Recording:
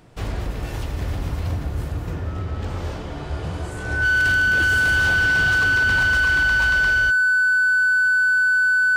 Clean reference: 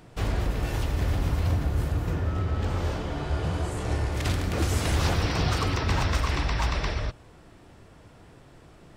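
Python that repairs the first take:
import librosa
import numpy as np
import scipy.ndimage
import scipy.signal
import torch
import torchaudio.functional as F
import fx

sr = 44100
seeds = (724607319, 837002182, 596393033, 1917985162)

y = fx.fix_declip(x, sr, threshold_db=-15.0)
y = fx.notch(y, sr, hz=1500.0, q=30.0)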